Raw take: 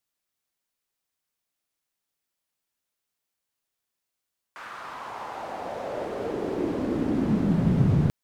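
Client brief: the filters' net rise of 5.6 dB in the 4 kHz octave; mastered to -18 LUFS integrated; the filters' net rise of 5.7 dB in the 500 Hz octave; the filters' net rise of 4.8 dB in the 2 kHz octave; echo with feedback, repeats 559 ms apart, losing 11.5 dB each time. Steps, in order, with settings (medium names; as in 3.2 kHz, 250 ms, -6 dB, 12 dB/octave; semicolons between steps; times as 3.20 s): peaking EQ 500 Hz +7 dB; peaking EQ 2 kHz +4.5 dB; peaking EQ 4 kHz +5.5 dB; feedback delay 559 ms, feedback 27%, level -11.5 dB; trim +7 dB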